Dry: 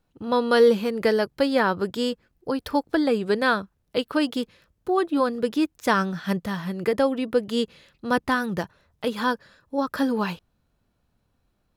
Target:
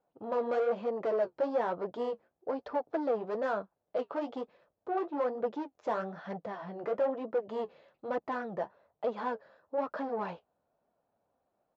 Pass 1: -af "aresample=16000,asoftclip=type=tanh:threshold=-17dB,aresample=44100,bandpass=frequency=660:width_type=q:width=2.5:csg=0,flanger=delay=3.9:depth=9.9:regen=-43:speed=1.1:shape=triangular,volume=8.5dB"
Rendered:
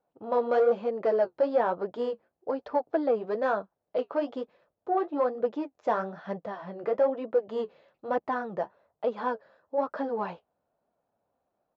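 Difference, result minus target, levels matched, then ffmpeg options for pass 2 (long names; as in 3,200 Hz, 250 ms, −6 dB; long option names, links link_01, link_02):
soft clipping: distortion −7 dB
-af "aresample=16000,asoftclip=type=tanh:threshold=-25.5dB,aresample=44100,bandpass=frequency=660:width_type=q:width=2.5:csg=0,flanger=delay=3.9:depth=9.9:regen=-43:speed=1.1:shape=triangular,volume=8.5dB"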